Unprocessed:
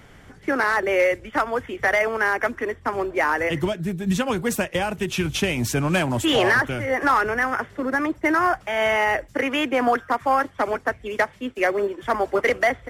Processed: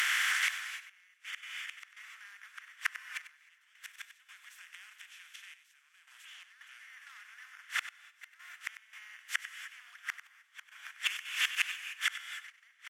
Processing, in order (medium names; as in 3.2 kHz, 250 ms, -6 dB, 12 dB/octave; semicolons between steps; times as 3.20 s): spectral levelling over time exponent 0.4; inverted gate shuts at -9 dBFS, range -35 dB; inverse Chebyshev high-pass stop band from 370 Hz, stop band 70 dB; in parallel at -1 dB: compression, threshold -37 dBFS, peak gain reduction 14 dB; on the sum: gated-style reverb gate 330 ms rising, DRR 9.5 dB; trance gate "xxxxx...xx.xx" 84 bpm -12 dB; on a send: delay 96 ms -13 dB; on the sum: trim -3 dB